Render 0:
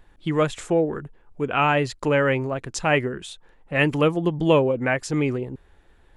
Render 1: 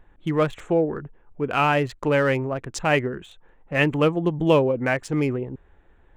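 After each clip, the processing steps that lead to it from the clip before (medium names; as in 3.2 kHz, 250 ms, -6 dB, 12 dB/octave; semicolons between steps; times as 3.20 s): local Wiener filter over 9 samples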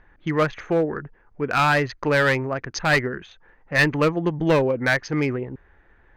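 rippled Chebyshev low-pass 6.5 kHz, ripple 9 dB; one-sided clip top -23.5 dBFS; trim +8.5 dB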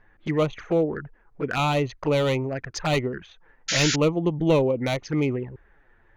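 touch-sensitive flanger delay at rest 10 ms, full sweep at -20 dBFS; painted sound noise, 3.68–3.96 s, 1.3–7.2 kHz -25 dBFS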